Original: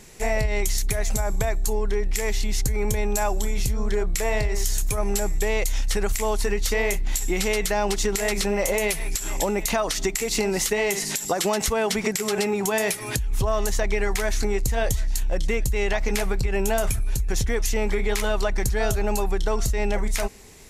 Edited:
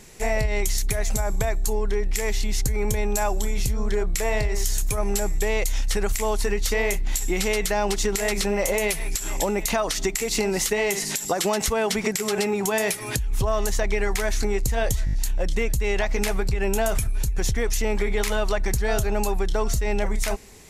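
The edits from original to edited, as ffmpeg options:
ffmpeg -i in.wav -filter_complex "[0:a]asplit=5[link_01][link_02][link_03][link_04][link_05];[link_01]atrim=end=15.072[link_06];[link_02]atrim=start=15.048:end=15.072[link_07];[link_03]atrim=start=15.048:end=15.072[link_08];[link_04]atrim=start=15.048:end=15.072[link_09];[link_05]atrim=start=15.048[link_10];[link_06][link_07]acrossfade=duration=0.004:curve1=hsin:curve2=hsin[link_11];[link_11][link_08]acrossfade=duration=0.004:curve1=hsin:curve2=hsin[link_12];[link_12][link_09]acrossfade=duration=0.004:curve1=hsin:curve2=hsin[link_13];[link_13][link_10]acrossfade=duration=0.004:curve1=hsin:curve2=hsin" out.wav

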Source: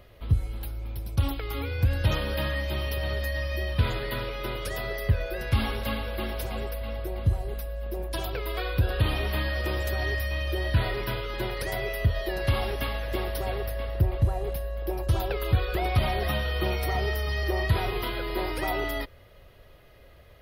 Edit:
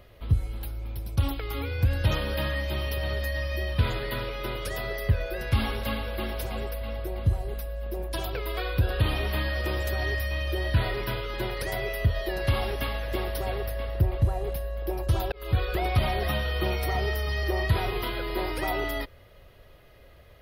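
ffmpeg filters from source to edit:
ffmpeg -i in.wav -filter_complex "[0:a]asplit=2[link_01][link_02];[link_01]atrim=end=15.32,asetpts=PTS-STARTPTS,afade=type=out:start_time=15.316:duration=0.004:curve=hsin[link_03];[link_02]atrim=start=15.32,asetpts=PTS-STARTPTS,afade=type=in:duration=0.27[link_04];[link_03][link_04]concat=n=2:v=0:a=1" out.wav

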